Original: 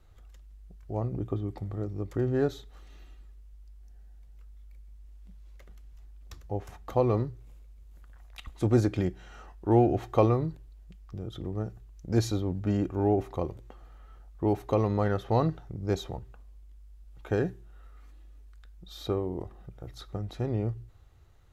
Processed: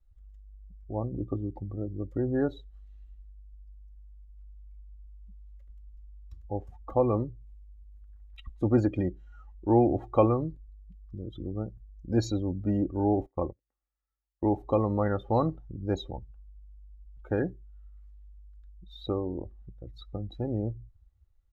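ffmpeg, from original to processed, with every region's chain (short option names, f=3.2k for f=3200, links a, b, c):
-filter_complex "[0:a]asettb=1/sr,asplit=3[a][b][c];[a]atrim=end=13.264[d];[b]atrim=start=13.26:end=14.49,asetpts=PTS-STARTPTS,afade=t=in:d=0.004:c=qsin,afade=t=out:st=1.226:d=0.004:c=qsin,agate=range=-19dB:threshold=-38dB:ratio=16:release=100:detection=peak,highshelf=f=2.8k:t=q:w=3:g=-11.5[e];[c]atrim=start=14.486[f];[d][e]acrossfade=d=0.004:c1=hsin:c2=qsin[g];[g][f]acrossfade=d=0.004:c1=qsin:c2=hsin,bandreject=f=6k:w=29,afftdn=nr=23:nf=-39,aecho=1:1:3.6:0.33"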